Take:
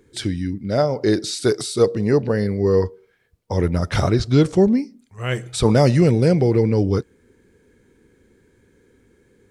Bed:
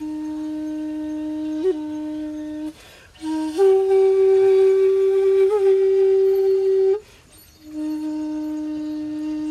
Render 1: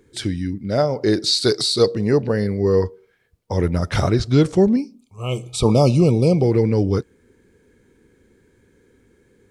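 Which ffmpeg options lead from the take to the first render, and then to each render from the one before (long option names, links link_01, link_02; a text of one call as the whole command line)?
ffmpeg -i in.wav -filter_complex "[0:a]asettb=1/sr,asplit=3[link_01][link_02][link_03];[link_01]atrim=end=1.264[link_04];[link_02]atrim=start=1.26:end=1.94,asetpts=PTS-STARTPTS,afade=type=in:duration=0.004:curve=qsin,afade=type=out:start_time=0.676:duration=0.004:curve=qsin,equalizer=frequency=4300:width=2.8:gain=14.5[link_05];[link_03]atrim=start=1.936[link_06];[link_04][link_05]acrossfade=duration=0.004:curve1=hsin:curve2=qsin[link_07];[link_07][link_06]acrossfade=duration=0.004:curve1=qsin:curve2=hsin,asettb=1/sr,asplit=3[link_08][link_09][link_10];[link_08]atrim=end=4.764[link_11];[link_09]atrim=start=4.76:end=6.44,asetpts=PTS-STARTPTS,afade=type=in:duration=0.004:curve=qsin,afade=type=out:start_time=1.676:duration=0.004:curve=qsin,asuperstop=centerf=1700:order=20:qfactor=1.9[link_12];[link_10]atrim=start=6.436[link_13];[link_11][link_12]acrossfade=duration=0.004:curve1=hsin:curve2=qsin[link_14];[link_14][link_13]acrossfade=duration=0.004:curve1=qsin:curve2=hsin" out.wav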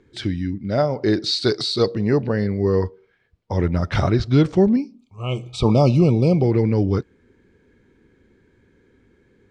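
ffmpeg -i in.wav -af "lowpass=4200,equalizer=frequency=470:width_type=o:width=0.37:gain=-4" out.wav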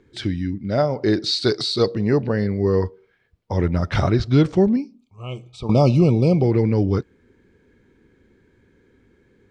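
ffmpeg -i in.wav -filter_complex "[0:a]asplit=2[link_01][link_02];[link_01]atrim=end=5.69,asetpts=PTS-STARTPTS,afade=type=out:start_time=4.49:duration=1.2:silence=0.223872[link_03];[link_02]atrim=start=5.69,asetpts=PTS-STARTPTS,afade=type=in:duration=0.004:curve=hsin:silence=0.223872[link_04];[link_03][link_04]concat=n=2:v=0:a=1" out.wav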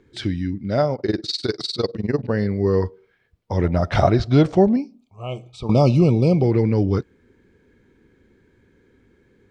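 ffmpeg -i in.wav -filter_complex "[0:a]asettb=1/sr,asplit=3[link_01][link_02][link_03];[link_01]atrim=end=0.954[link_04];[link_02]atrim=start=0.95:end=2.29,asetpts=PTS-STARTPTS,afade=type=in:duration=0.004:curve=qsin,afade=type=out:start_time=1.336:duration=0.004:curve=qsin,tremolo=f=20:d=0.919[link_05];[link_03]atrim=start=2.286[link_06];[link_04][link_05]acrossfade=duration=0.004:curve1=hsin:curve2=qsin[link_07];[link_07][link_06]acrossfade=duration=0.004:curve1=qsin:curve2=hsin,asettb=1/sr,asplit=3[link_08][link_09][link_10];[link_08]atrim=end=3.644[link_11];[link_09]atrim=start=3.64:end=5.51,asetpts=PTS-STARTPTS,afade=type=in:duration=0.004:curve=qsin,afade=type=out:start_time=1.866:duration=0.004:curve=qsin,equalizer=frequency=680:width=2.3:gain=10[link_12];[link_10]atrim=start=5.506[link_13];[link_11][link_12]acrossfade=duration=0.004:curve1=hsin:curve2=qsin[link_14];[link_14][link_13]acrossfade=duration=0.004:curve1=qsin:curve2=hsin" out.wav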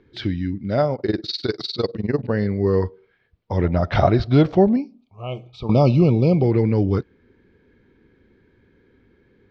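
ffmpeg -i in.wav -af "lowpass=frequency=4800:width=0.5412,lowpass=frequency=4800:width=1.3066" out.wav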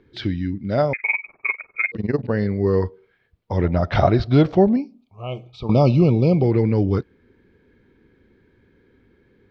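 ffmpeg -i in.wav -filter_complex "[0:a]asettb=1/sr,asplit=3[link_01][link_02][link_03];[link_01]atrim=end=0.934[link_04];[link_02]atrim=start=0.93:end=1.92,asetpts=PTS-STARTPTS,afade=type=in:duration=0.004:curve=qsin,afade=type=out:start_time=0.986:duration=0.004:curve=qsin,lowpass=frequency=2200:width_type=q:width=0.5098,lowpass=frequency=2200:width_type=q:width=0.6013,lowpass=frequency=2200:width_type=q:width=0.9,lowpass=frequency=2200:width_type=q:width=2.563,afreqshift=-2600[link_05];[link_03]atrim=start=1.916[link_06];[link_04][link_05]acrossfade=duration=0.004:curve1=hsin:curve2=qsin[link_07];[link_07][link_06]acrossfade=duration=0.004:curve1=qsin:curve2=hsin" out.wav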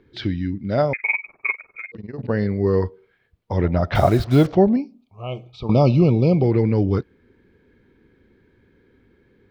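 ffmpeg -i in.wav -filter_complex "[0:a]asplit=3[link_01][link_02][link_03];[link_01]afade=type=out:start_time=1.56:duration=0.02[link_04];[link_02]acompressor=threshold=-36dB:ratio=2.5:attack=3.2:release=140:knee=1:detection=peak,afade=type=in:start_time=1.56:duration=0.02,afade=type=out:start_time=2.16:duration=0.02[link_05];[link_03]afade=type=in:start_time=2.16:duration=0.02[link_06];[link_04][link_05][link_06]amix=inputs=3:normalize=0,asettb=1/sr,asplit=3[link_07][link_08][link_09];[link_07]atrim=end=3.954[link_10];[link_08]atrim=start=3.95:end=4.47,asetpts=PTS-STARTPTS,afade=type=in:duration=0.004:curve=qsin,afade=type=out:start_time=0.516:duration=0.004:curve=qsin,acrusher=bits=5:mix=0:aa=0.5[link_11];[link_09]atrim=start=4.466[link_12];[link_10][link_11]acrossfade=duration=0.004:curve1=hsin:curve2=qsin[link_13];[link_13][link_12]acrossfade=duration=0.004:curve1=qsin:curve2=hsin" out.wav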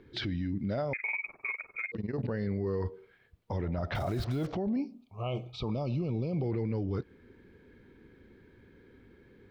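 ffmpeg -i in.wav -af "acompressor=threshold=-21dB:ratio=6,alimiter=level_in=1.5dB:limit=-24dB:level=0:latency=1:release=20,volume=-1.5dB" out.wav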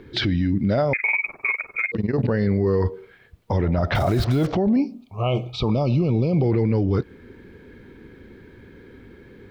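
ffmpeg -i in.wav -af "volume=12dB" out.wav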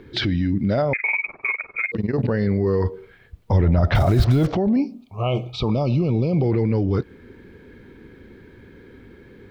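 ffmpeg -i in.wav -filter_complex "[0:a]asettb=1/sr,asplit=3[link_01][link_02][link_03];[link_01]atrim=end=0.824[link_04];[link_02]atrim=start=0.82:end=1.8,asetpts=PTS-STARTPTS,afade=type=in:duration=0.004:curve=qsin,afade=type=out:start_time=0.976:duration=0.004:curve=qsin,lowpass=3600[link_05];[link_03]atrim=start=1.796[link_06];[link_04][link_05]acrossfade=duration=0.004:curve1=hsin:curve2=qsin[link_07];[link_07][link_06]acrossfade=duration=0.004:curve1=qsin:curve2=hsin,asettb=1/sr,asplit=3[link_08][link_09][link_10];[link_08]atrim=end=2.944[link_11];[link_09]atrim=start=2.94:end=4.48,asetpts=PTS-STARTPTS,afade=type=in:duration=0.004:curve=qsin,afade=type=out:start_time=1.536:duration=0.004:curve=qsin,lowshelf=frequency=98:gain=11.5[link_12];[link_10]atrim=start=4.476[link_13];[link_11][link_12]acrossfade=duration=0.004:curve1=hsin:curve2=qsin[link_14];[link_14][link_13]acrossfade=duration=0.004:curve1=qsin:curve2=hsin" out.wav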